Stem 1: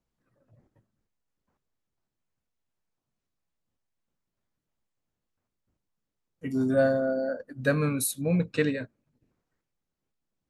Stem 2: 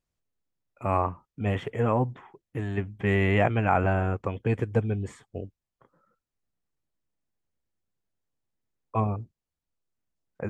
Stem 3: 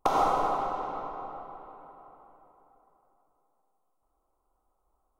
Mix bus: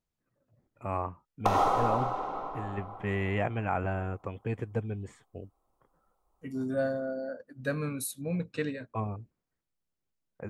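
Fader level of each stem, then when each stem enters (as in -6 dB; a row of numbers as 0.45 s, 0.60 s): -7.0 dB, -7.5 dB, -0.5 dB; 0.00 s, 0.00 s, 1.40 s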